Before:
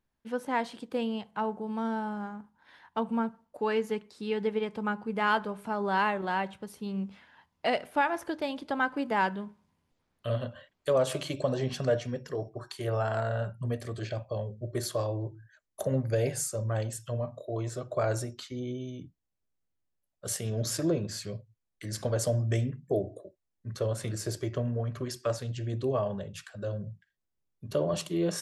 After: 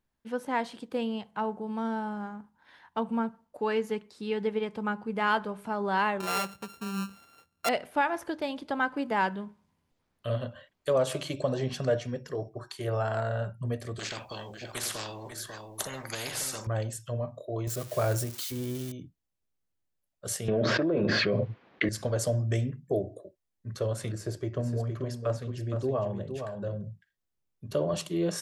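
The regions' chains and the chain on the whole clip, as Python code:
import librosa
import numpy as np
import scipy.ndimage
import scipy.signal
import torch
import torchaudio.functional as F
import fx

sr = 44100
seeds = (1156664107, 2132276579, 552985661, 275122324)

y = fx.chain(x, sr, fx.sample_sort(block=32),
    fx.highpass(hz=49.0, slope=12), at=(6.2, 7.69))
y = fx.chain(y, sr, fx.echo_single(ms=544, db=-19.0),
    fx.spectral_comp(ratio=4.0), at=(13.99, 16.67))
y = fx.chain(y, sr, fx.crossing_spikes(level_db=-29.5),
    fx.low_shelf(hz=90.0, db=9.0), at=(17.67, 18.92))
y = fx.chain(y, sr, fx.bandpass_edges(low_hz=250.0, high_hz=3000.0),
    fx.air_absorb(metres=260.0),
    fx.env_flatten(amount_pct=100), at=(20.48, 21.89))
y = fx.chain(y, sr, fx.high_shelf(hz=2200.0, db=-8.5),
    fx.echo_single(ms=465, db=-7.5), at=(24.12, 26.81))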